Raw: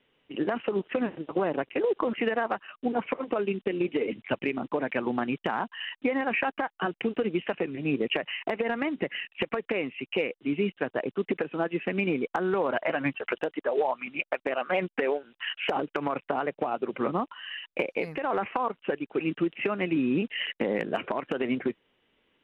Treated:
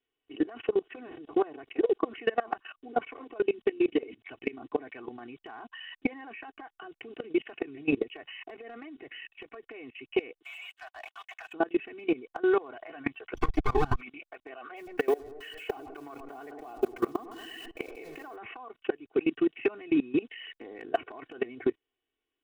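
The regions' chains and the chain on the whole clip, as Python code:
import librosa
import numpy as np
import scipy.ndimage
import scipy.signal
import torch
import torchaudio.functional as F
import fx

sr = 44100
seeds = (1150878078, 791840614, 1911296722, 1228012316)

y = fx.chain(x, sr, fx.steep_highpass(hz=670.0, slope=72),
    fx.leveller(passes=2), at=(10.42, 11.53))
y = fx.chain(y, sr, fx.lower_of_two(delay_ms=0.86),
    fx.low_shelf(hz=460.0, db=10.0),
    fx.band_squash(depth_pct=70), at=(13.34, 14.01))
y = fx.chain(y, sr, fx.delta_hold(step_db=-43.0),
    fx.echo_tape(ms=106, feedback_pct=81, wet_db=-10, lp_hz=1000.0, drive_db=19.0, wow_cents=40), at=(14.76, 18.36))
y = y + 0.95 * np.pad(y, (int(2.7 * sr / 1000.0), 0))[:len(y)]
y = fx.level_steps(y, sr, step_db=22)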